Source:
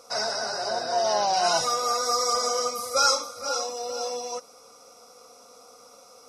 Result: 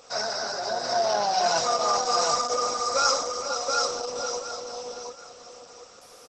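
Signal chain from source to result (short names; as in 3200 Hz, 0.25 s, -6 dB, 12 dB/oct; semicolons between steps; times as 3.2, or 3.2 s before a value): added noise white -54 dBFS; feedback echo 0.726 s, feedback 26%, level -4 dB; Opus 12 kbps 48000 Hz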